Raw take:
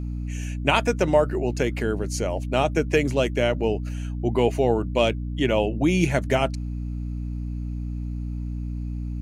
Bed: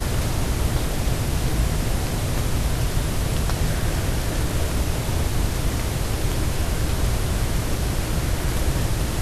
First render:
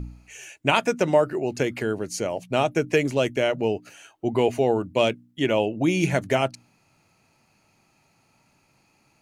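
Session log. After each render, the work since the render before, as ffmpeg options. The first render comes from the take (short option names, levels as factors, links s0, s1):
-af "bandreject=f=60:t=h:w=4,bandreject=f=120:t=h:w=4,bandreject=f=180:t=h:w=4,bandreject=f=240:t=h:w=4,bandreject=f=300:t=h:w=4"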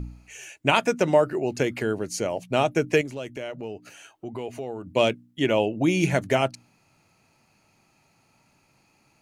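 -filter_complex "[0:a]asettb=1/sr,asplit=3[s0][s1][s2];[s0]atrim=end=3.014[s3];[s1]atrim=start=3.01:end=4.87,asetpts=PTS-STARTPTS,afade=t=in:d=0.004:c=qsin,afade=t=out:st=1.856:d=0.004:c=qsin,acompressor=threshold=0.0112:ratio=2:attack=3.2:release=140:knee=1:detection=peak[s4];[s2]atrim=start=4.866[s5];[s3][s4]acrossfade=d=0.004:c1=hsin:c2=qsin[s6];[s6][s5]acrossfade=d=0.004:c1=qsin:c2=hsin"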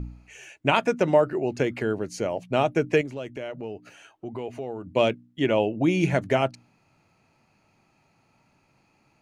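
-af "lowpass=f=2900:p=1"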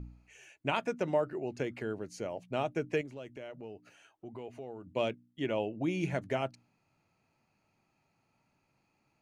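-af "volume=0.299"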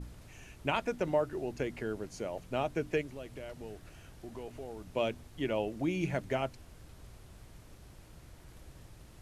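-filter_complex "[1:a]volume=0.0299[s0];[0:a][s0]amix=inputs=2:normalize=0"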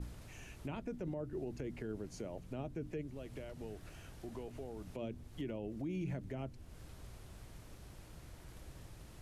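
-filter_complex "[0:a]acrossover=split=380[s0][s1];[s1]acompressor=threshold=0.00282:ratio=3[s2];[s0][s2]amix=inputs=2:normalize=0,alimiter=level_in=2.66:limit=0.0631:level=0:latency=1:release=45,volume=0.376"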